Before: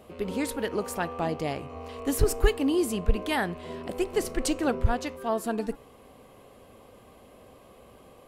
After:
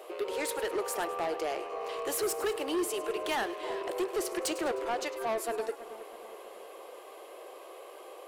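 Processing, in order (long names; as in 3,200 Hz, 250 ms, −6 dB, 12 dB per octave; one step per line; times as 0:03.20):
elliptic high-pass filter 350 Hz, stop band 40 dB
in parallel at +1 dB: downward compressor, threshold −39 dBFS, peak gain reduction 17 dB
on the sum: soft clipping −26.5 dBFS, distortion −9 dB
echo with a time of its own for lows and highs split 2,000 Hz, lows 322 ms, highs 103 ms, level −14.5 dB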